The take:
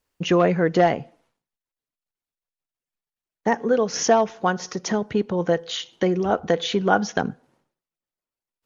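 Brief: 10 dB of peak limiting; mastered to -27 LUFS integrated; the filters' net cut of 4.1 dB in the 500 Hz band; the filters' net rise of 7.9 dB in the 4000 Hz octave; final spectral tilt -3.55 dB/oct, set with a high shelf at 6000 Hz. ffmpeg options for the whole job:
-af "equalizer=f=500:t=o:g=-5.5,equalizer=f=4k:t=o:g=8.5,highshelf=f=6k:g=6,volume=-1.5dB,alimiter=limit=-15.5dB:level=0:latency=1"

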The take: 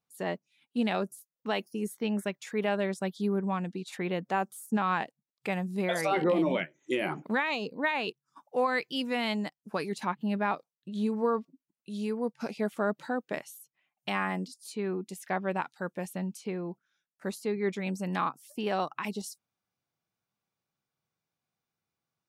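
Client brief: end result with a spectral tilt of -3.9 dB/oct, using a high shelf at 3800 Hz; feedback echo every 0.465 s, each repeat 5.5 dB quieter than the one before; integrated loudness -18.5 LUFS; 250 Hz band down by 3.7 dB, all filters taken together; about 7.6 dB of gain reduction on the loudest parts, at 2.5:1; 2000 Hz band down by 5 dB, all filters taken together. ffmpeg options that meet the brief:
-af "equalizer=f=250:t=o:g=-5,equalizer=f=2k:t=o:g=-8.5,highshelf=f=3.8k:g=8.5,acompressor=threshold=-36dB:ratio=2.5,aecho=1:1:465|930|1395|1860|2325|2790|3255:0.531|0.281|0.149|0.079|0.0419|0.0222|0.0118,volume=19.5dB"

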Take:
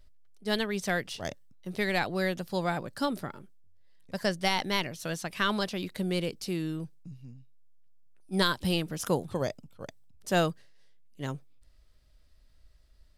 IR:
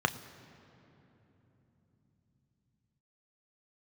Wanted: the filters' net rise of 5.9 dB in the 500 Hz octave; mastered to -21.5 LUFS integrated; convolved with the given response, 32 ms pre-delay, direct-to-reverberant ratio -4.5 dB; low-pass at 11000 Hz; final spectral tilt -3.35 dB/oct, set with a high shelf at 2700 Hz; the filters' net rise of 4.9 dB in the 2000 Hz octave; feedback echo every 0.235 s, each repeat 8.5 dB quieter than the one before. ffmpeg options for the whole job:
-filter_complex "[0:a]lowpass=11k,equalizer=f=500:t=o:g=7,equalizer=f=2k:t=o:g=3.5,highshelf=f=2.7k:g=5.5,aecho=1:1:235|470|705|940:0.376|0.143|0.0543|0.0206,asplit=2[a][b];[1:a]atrim=start_sample=2205,adelay=32[c];[b][c]afir=irnorm=-1:irlink=0,volume=-5.5dB[d];[a][d]amix=inputs=2:normalize=0"

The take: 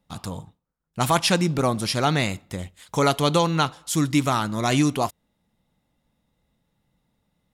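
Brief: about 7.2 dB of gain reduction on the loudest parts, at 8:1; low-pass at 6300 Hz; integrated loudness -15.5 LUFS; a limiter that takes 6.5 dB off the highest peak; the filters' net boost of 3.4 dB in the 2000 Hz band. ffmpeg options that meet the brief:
-af "lowpass=6.3k,equalizer=f=2k:t=o:g=4.5,acompressor=threshold=-22dB:ratio=8,volume=14.5dB,alimiter=limit=-4dB:level=0:latency=1"

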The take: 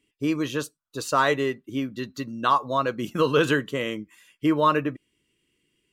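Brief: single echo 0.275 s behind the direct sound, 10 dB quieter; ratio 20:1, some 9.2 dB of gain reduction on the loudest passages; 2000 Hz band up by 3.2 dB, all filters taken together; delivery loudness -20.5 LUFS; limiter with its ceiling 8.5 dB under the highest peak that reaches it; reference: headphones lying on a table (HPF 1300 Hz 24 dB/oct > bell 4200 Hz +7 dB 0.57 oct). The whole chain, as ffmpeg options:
-af "equalizer=f=2k:t=o:g=4.5,acompressor=threshold=-23dB:ratio=20,alimiter=limit=-20.5dB:level=0:latency=1,highpass=f=1.3k:w=0.5412,highpass=f=1.3k:w=1.3066,equalizer=f=4.2k:t=o:w=0.57:g=7,aecho=1:1:275:0.316,volume=15.5dB"

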